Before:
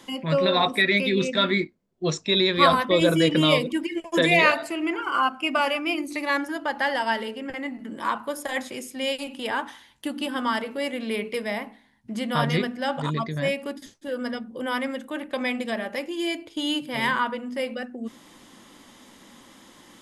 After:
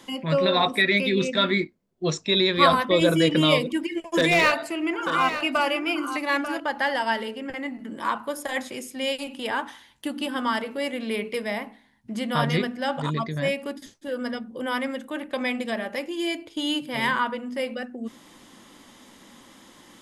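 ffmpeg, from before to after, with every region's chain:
ffmpeg -i in.wav -filter_complex "[0:a]asettb=1/sr,asplit=3[link_01][link_02][link_03];[link_01]atrim=end=4.014[link_04];[link_02]atrim=start=4.01:end=6.6,asetpts=PTS-STARTPTS,afade=type=in:duration=0.004:curve=qsin,afade=type=out:start_time=2.586:duration=0.004:curve=qsin,volume=14dB,asoftclip=hard,volume=-14dB,aecho=1:1:891:0.299,atrim=end_sample=114219[link_05];[link_03]atrim=start=6.596[link_06];[link_04][link_05]acrossfade=duration=0.004:curve1=hsin:curve2=qsin[link_07];[link_07][link_06]acrossfade=duration=0.004:curve1=qsin:curve2=hsin" out.wav

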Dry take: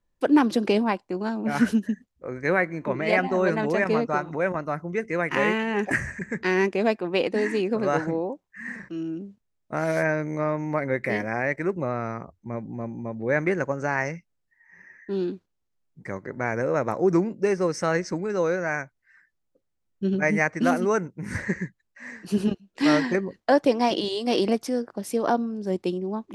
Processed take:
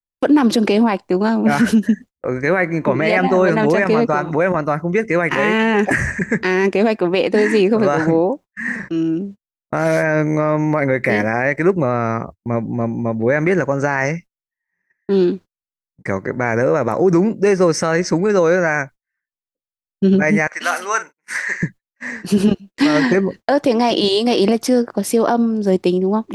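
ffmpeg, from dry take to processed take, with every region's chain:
ffmpeg -i in.wav -filter_complex "[0:a]asettb=1/sr,asplit=3[link_01][link_02][link_03];[link_01]atrim=end=20.474[link_04];[link_02]atrim=start=20.47:end=21.63,asetpts=PTS-STARTPTS,afade=type=in:duration=0.004:curve=qsin,afade=type=out:start_time=1.156:duration=0.004:curve=qsin,highpass=1200,asplit=2[link_05][link_06];[link_06]adelay=46,volume=-12.5dB[link_07];[link_05][link_07]amix=inputs=2:normalize=0,atrim=end_sample=51156[link_08];[link_03]atrim=start=21.626[link_09];[link_04][link_08]acrossfade=duration=0.004:curve1=hsin:curve2=qsin[link_10];[link_10][link_09]acrossfade=duration=0.004:curve1=qsin:curve2=hsin,agate=range=-35dB:threshold=-44dB:ratio=16:detection=peak,alimiter=level_in=17dB:limit=-1dB:release=50:level=0:latency=1,volume=-4.5dB" out.wav

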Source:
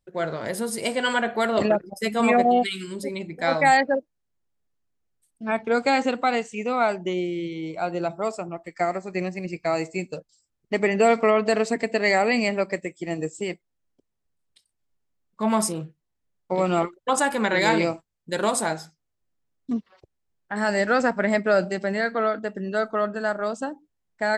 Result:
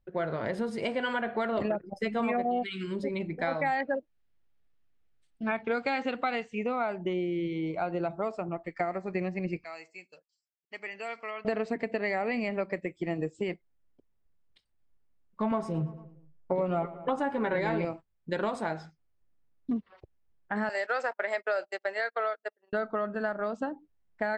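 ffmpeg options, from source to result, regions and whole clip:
ffmpeg -i in.wav -filter_complex "[0:a]asettb=1/sr,asplit=3[link_01][link_02][link_03];[link_01]atrim=end=3.804[link_04];[link_02]atrim=start=3.8:end=6.45,asetpts=PTS-STARTPTS,afade=type=in:duration=0.004:curve=qsin,afade=type=out:start_time=2.646:duration=0.004:curve=qsin,equalizer=frequency=4000:width_type=o:width=2.8:gain=8,bandreject=frequency=1000:width=19[link_05];[link_03]atrim=start=6.446[link_06];[link_04][link_05]acrossfade=duration=0.004:curve1=hsin:curve2=qsin[link_07];[link_07][link_06]acrossfade=duration=0.004:curve1=qsin:curve2=hsin,asettb=1/sr,asplit=3[link_08][link_09][link_10];[link_08]atrim=end=9.644[link_11];[link_09]atrim=start=9.64:end=11.45,asetpts=PTS-STARTPTS,afade=type=in:duration=0.004:curve=qsin,afade=type=out:start_time=1.806:duration=0.004:curve=qsin,lowpass=6800,aderivative,bandreject=frequency=3700:width=5.7[link_12];[link_10]atrim=start=11.446[link_13];[link_11][link_12]acrossfade=duration=0.004:curve1=hsin:curve2=qsin[link_14];[link_14][link_13]acrossfade=duration=0.004:curve1=qsin:curve2=hsin,asettb=1/sr,asplit=3[link_15][link_16][link_17];[link_15]atrim=end=15.514[link_18];[link_16]atrim=start=15.51:end=17.85,asetpts=PTS-STARTPTS,afade=type=in:duration=0.004:curve=qsin,afade=type=out:start_time=2.336:duration=0.004:curve=qsin,tiltshelf=frequency=1200:gain=4.5,aecho=1:1:7.3:0.54,atrim=end_sample=103194,asplit=2[link_19][link_20];[link_20]adelay=113,lowpass=frequency=3300:poles=1,volume=-19.5dB,asplit=2[link_21][link_22];[link_22]adelay=113,lowpass=frequency=3300:poles=1,volume=0.51,asplit=2[link_23][link_24];[link_24]adelay=113,lowpass=frequency=3300:poles=1,volume=0.51,asplit=2[link_25][link_26];[link_26]adelay=113,lowpass=frequency=3300:poles=1,volume=0.51[link_27];[link_19][link_21][link_23][link_25][link_27]amix=inputs=5:normalize=0,atrim=end_sample=103194[link_28];[link_17]atrim=start=17.846[link_29];[link_18][link_28]acrossfade=duration=0.004:curve1=hsin:curve2=qsin[link_30];[link_30][link_29]acrossfade=duration=0.004:curve1=qsin:curve2=hsin,asettb=1/sr,asplit=3[link_31][link_32][link_33];[link_31]atrim=end=20.694[link_34];[link_32]atrim=start=20.69:end=22.73,asetpts=PTS-STARTPTS,afade=type=in:duration=0.004:curve=qsin,afade=type=out:start_time=2.036:duration=0.004:curve=qsin,aemphasis=mode=production:type=75kf,agate=range=-37dB:threshold=-26dB:ratio=16:release=100:detection=peak,highpass=frequency=460:width=0.5412,highpass=frequency=460:width=1.3066[link_35];[link_33]atrim=start=22.726[link_36];[link_34][link_35]acrossfade=duration=0.004:curve1=hsin:curve2=qsin[link_37];[link_37][link_36]acrossfade=duration=0.004:curve1=qsin:curve2=hsin,acompressor=threshold=-28dB:ratio=4,lowpass=2800,lowshelf=frequency=68:gain=8.5" out.wav

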